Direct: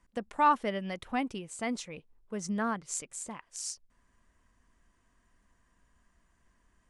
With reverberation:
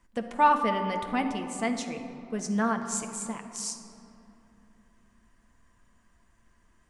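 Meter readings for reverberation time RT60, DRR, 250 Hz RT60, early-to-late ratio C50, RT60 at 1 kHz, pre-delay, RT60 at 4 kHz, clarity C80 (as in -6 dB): 3.0 s, 4.5 dB, 4.0 s, 7.5 dB, 2.7 s, 9 ms, 1.4 s, 8.5 dB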